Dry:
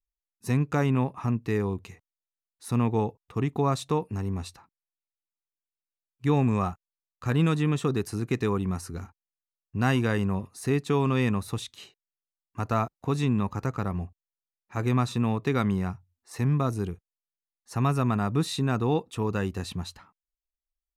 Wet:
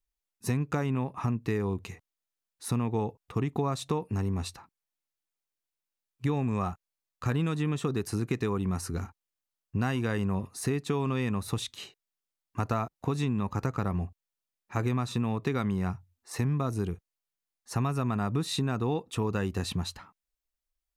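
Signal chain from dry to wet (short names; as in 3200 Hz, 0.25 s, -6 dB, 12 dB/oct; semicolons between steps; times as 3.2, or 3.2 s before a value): compressor, threshold -29 dBFS, peak gain reduction 10.5 dB; gain +3.5 dB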